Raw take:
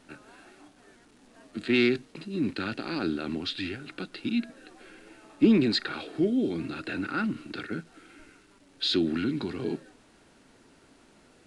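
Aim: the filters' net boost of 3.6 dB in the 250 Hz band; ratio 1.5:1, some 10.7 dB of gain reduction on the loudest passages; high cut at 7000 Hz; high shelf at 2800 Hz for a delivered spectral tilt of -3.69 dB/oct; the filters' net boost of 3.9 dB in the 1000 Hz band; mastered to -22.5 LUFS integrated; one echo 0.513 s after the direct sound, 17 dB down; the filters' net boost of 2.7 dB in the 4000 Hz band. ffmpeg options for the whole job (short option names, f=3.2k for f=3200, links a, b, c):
-af "lowpass=7k,equalizer=f=250:t=o:g=4,equalizer=f=1k:t=o:g=6.5,highshelf=f=2.8k:g=-5.5,equalizer=f=4k:t=o:g=7,acompressor=threshold=-43dB:ratio=1.5,aecho=1:1:513:0.141,volume=11.5dB"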